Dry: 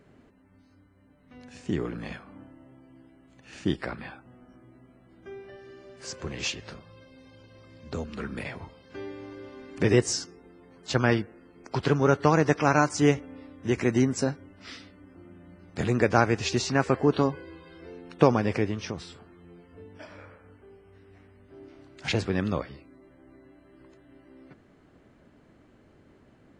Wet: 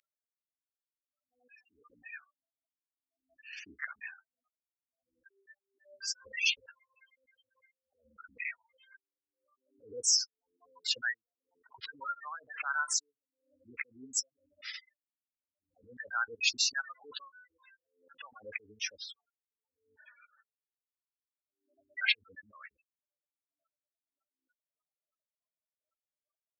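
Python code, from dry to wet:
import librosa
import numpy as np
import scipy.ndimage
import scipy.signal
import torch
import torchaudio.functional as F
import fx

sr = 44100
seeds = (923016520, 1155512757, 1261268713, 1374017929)

y = fx.spec_gate(x, sr, threshold_db=-10, keep='strong')
y = scipy.signal.sosfilt(scipy.signal.cheby2(4, 70, 400.0, 'highpass', fs=sr, output='sos'), y)
y = fx.pre_swell(y, sr, db_per_s=130.0)
y = y * 10.0 ** (5.5 / 20.0)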